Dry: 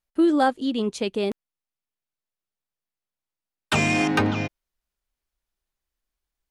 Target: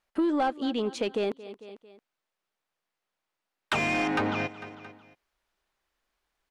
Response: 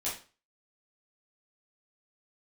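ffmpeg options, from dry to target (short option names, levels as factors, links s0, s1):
-filter_complex "[0:a]aecho=1:1:224|448|672:0.0841|0.0345|0.0141,asplit=2[s0][s1];[s1]highpass=f=720:p=1,volume=6.31,asoftclip=type=tanh:threshold=0.447[s2];[s0][s2]amix=inputs=2:normalize=0,lowpass=f=1700:p=1,volume=0.501,acompressor=threshold=0.0126:ratio=2,volume=1.5"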